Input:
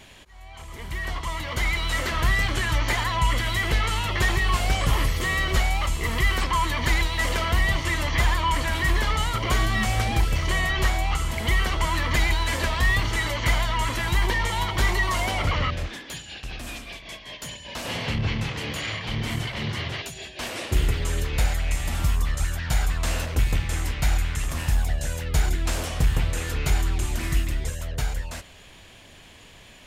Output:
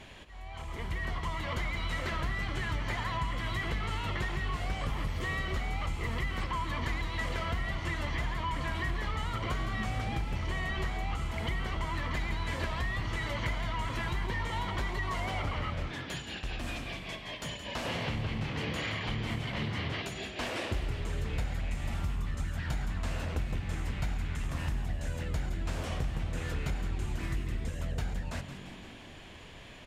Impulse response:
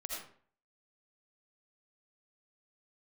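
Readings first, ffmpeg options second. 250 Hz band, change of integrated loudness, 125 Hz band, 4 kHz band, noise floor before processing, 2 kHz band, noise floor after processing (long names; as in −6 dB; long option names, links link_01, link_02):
−6.0 dB, −10.0 dB, −8.5 dB, −11.0 dB, −48 dBFS, −10.5 dB, −46 dBFS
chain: -filter_complex "[0:a]lowpass=frequency=2800:poles=1,acompressor=threshold=-31dB:ratio=6,asplit=2[link_01][link_02];[link_02]asplit=8[link_03][link_04][link_05][link_06][link_07][link_08][link_09][link_10];[link_03]adelay=172,afreqshift=48,volume=-11dB[link_11];[link_04]adelay=344,afreqshift=96,volume=-15dB[link_12];[link_05]adelay=516,afreqshift=144,volume=-19dB[link_13];[link_06]adelay=688,afreqshift=192,volume=-23dB[link_14];[link_07]adelay=860,afreqshift=240,volume=-27.1dB[link_15];[link_08]adelay=1032,afreqshift=288,volume=-31.1dB[link_16];[link_09]adelay=1204,afreqshift=336,volume=-35.1dB[link_17];[link_10]adelay=1376,afreqshift=384,volume=-39.1dB[link_18];[link_11][link_12][link_13][link_14][link_15][link_16][link_17][link_18]amix=inputs=8:normalize=0[link_19];[link_01][link_19]amix=inputs=2:normalize=0"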